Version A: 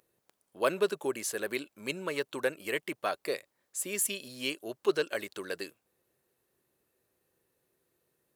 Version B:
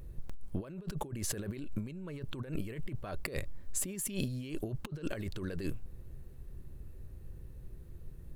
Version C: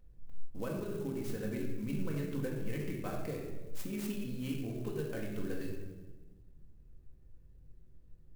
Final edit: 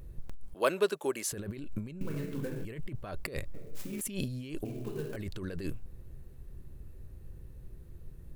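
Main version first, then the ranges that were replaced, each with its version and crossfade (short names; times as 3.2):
B
0.54–1.32 from A
2.01–2.65 from C
3.54–4.01 from C
4.65–5.16 from C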